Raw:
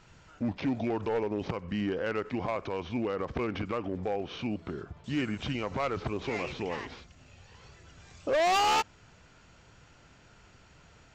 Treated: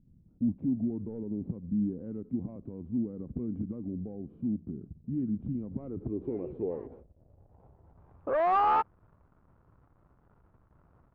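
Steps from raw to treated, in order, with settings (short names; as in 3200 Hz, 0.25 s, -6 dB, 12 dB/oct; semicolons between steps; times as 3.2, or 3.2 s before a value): 6.71–8.36 Gaussian blur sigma 1.8 samples; backlash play -48 dBFS; low-pass sweep 230 Hz -> 1200 Hz, 5.65–8.32; gain -3.5 dB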